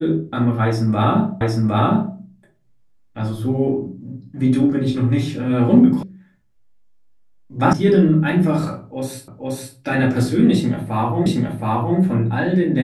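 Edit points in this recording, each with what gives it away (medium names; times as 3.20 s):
1.41 s: repeat of the last 0.76 s
6.03 s: sound stops dead
7.73 s: sound stops dead
9.28 s: repeat of the last 0.48 s
11.26 s: repeat of the last 0.72 s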